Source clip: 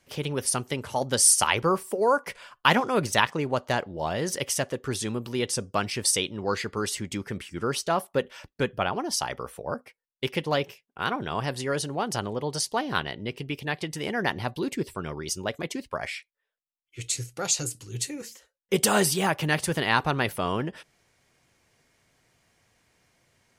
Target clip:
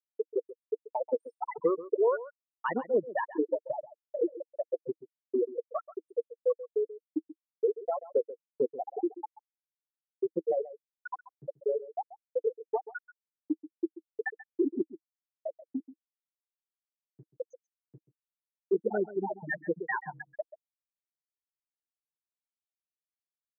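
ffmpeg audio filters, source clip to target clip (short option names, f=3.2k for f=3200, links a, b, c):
-af "afftfilt=real='re*gte(hypot(re,im),0.355)':imag='im*gte(hypot(re,im),0.355)':win_size=1024:overlap=0.75,equalizer=f=310:t=o:w=0.77:g=2.5,acompressor=threshold=-43dB:ratio=3,highpass=f=220:w=0.5412,highpass=f=220:w=1.3066,equalizer=f=320:t=q:w=4:g=8,equalizer=f=470:t=q:w=4:g=8,equalizer=f=1.3k:t=q:w=4:g=-4,equalizer=f=1.9k:t=q:w=4:g=4,lowpass=f=2.1k:w=0.5412,lowpass=f=2.1k:w=1.3066,aecho=1:1:134:0.158,volume=8dB"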